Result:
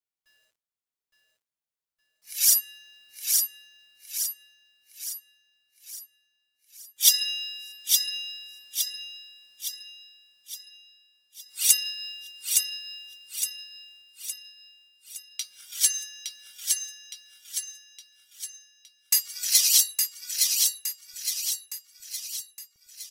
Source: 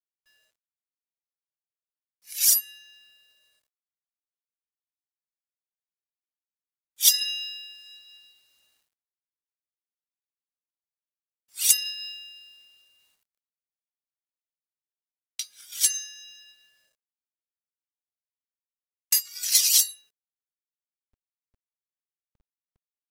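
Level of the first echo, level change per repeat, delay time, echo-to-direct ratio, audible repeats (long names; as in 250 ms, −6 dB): −3.5 dB, −6.0 dB, 864 ms, −2.5 dB, 6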